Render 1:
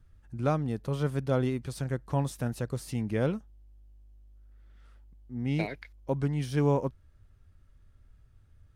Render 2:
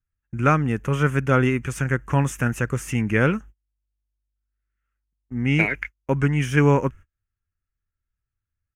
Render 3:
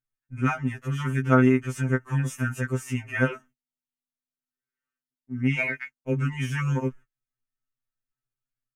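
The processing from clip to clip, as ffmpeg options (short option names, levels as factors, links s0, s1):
-af "agate=range=0.02:threshold=0.00501:ratio=16:detection=peak,firequalizer=gain_entry='entry(390,0);entry(650,-5);entry(1400,10);entry(2700,9);entry(4100,-16);entry(6400,6);entry(9100,-1)':delay=0.05:min_phase=1,volume=2.66"
-af "aecho=1:1:4.5:0.38,afftfilt=real='re*2.45*eq(mod(b,6),0)':imag='im*2.45*eq(mod(b,6),0)':win_size=2048:overlap=0.75,volume=0.668"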